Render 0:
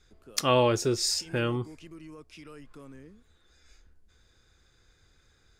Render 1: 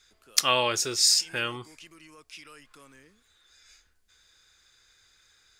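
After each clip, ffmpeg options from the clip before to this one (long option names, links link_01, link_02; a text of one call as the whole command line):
ffmpeg -i in.wav -af "tiltshelf=frequency=790:gain=-10,volume=-2dB" out.wav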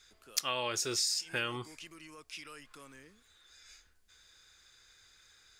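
ffmpeg -i in.wav -af "acompressor=threshold=-29dB:ratio=12" out.wav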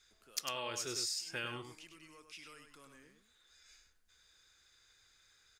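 ffmpeg -i in.wav -af "aecho=1:1:101:0.447,volume=-6.5dB" out.wav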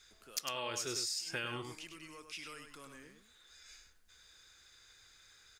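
ffmpeg -i in.wav -af "acompressor=threshold=-43dB:ratio=2.5,volume=6dB" out.wav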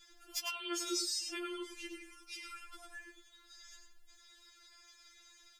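ffmpeg -i in.wav -af "afftfilt=real='re*4*eq(mod(b,16),0)':imag='im*4*eq(mod(b,16),0)':win_size=2048:overlap=0.75,volume=3dB" out.wav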